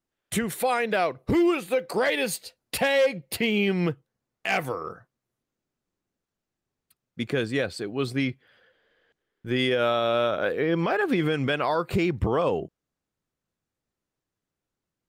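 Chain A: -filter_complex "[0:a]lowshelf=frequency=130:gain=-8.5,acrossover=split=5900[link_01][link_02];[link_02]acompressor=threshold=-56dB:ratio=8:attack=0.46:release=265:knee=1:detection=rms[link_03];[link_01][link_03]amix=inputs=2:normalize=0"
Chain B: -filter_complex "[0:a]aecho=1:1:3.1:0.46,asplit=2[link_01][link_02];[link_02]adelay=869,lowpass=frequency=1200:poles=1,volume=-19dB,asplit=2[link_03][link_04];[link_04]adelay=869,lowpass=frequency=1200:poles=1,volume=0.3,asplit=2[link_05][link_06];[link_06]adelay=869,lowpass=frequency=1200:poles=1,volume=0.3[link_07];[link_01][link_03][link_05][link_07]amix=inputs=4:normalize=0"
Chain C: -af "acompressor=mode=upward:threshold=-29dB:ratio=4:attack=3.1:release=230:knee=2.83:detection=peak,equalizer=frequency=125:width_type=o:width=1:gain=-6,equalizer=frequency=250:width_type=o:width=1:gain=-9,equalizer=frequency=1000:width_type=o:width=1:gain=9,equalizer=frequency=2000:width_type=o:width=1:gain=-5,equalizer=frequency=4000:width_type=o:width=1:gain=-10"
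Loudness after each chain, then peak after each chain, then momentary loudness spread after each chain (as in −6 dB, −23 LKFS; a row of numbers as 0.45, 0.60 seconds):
−26.5, −25.0, −26.5 LKFS; −13.5, −12.0, −10.5 dBFS; 10, 13, 20 LU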